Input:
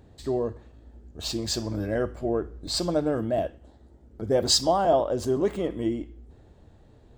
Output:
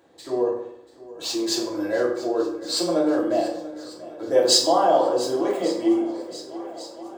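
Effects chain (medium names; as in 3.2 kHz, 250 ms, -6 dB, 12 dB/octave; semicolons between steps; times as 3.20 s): high-pass 420 Hz 12 dB/octave; shuffle delay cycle 1144 ms, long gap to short 1.5:1, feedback 59%, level -18 dB; reverberation RT60 0.75 s, pre-delay 3 ms, DRR -4 dB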